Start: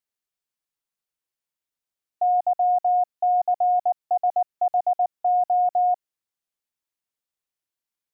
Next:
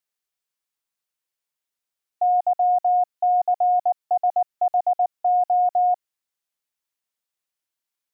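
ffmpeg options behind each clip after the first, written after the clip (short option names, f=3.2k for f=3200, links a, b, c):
-af "lowshelf=f=440:g=-6.5,volume=3dB"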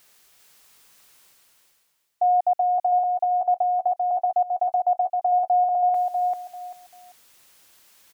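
-af "areverse,acompressor=mode=upward:threshold=-34dB:ratio=2.5,areverse,aecho=1:1:392|784|1176:0.668|0.14|0.0295"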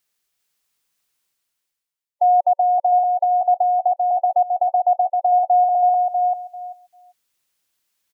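-af "afftdn=nr=25:nf=-30,equalizer=f=740:w=0.54:g=-3.5,volume=8dB"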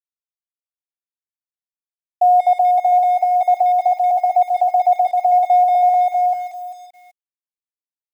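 -filter_complex "[0:a]asplit=2[a][b];[b]adelay=180,highpass=300,lowpass=3.4k,asoftclip=type=hard:threshold=-20dB,volume=-13dB[c];[a][c]amix=inputs=2:normalize=0,acrusher=bits=7:mix=0:aa=0.5,volume=2.5dB"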